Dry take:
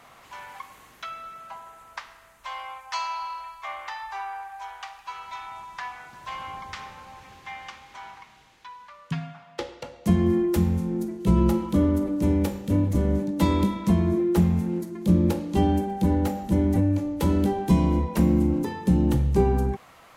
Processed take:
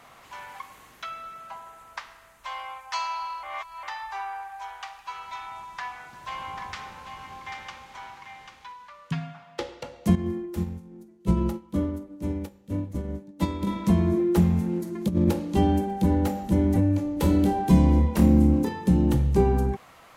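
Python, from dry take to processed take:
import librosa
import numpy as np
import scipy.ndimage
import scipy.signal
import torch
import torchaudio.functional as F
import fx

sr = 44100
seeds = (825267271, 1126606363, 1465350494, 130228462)

y = fx.echo_single(x, sr, ms=791, db=-7.0, at=(6.35, 8.72), fade=0.02)
y = fx.upward_expand(y, sr, threshold_db=-29.0, expansion=2.5, at=(10.15, 13.67))
y = fx.over_compress(y, sr, threshold_db=-21.0, ratio=-0.5, at=(14.85, 15.3))
y = fx.room_flutter(y, sr, wall_m=4.6, rt60_s=0.25, at=(17.14, 18.69))
y = fx.edit(y, sr, fx.reverse_span(start_s=3.43, length_s=0.4), tone=tone)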